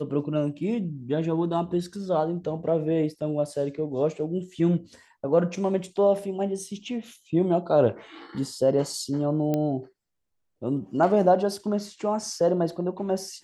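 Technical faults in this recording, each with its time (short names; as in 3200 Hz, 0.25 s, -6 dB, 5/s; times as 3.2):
9.54 pop -14 dBFS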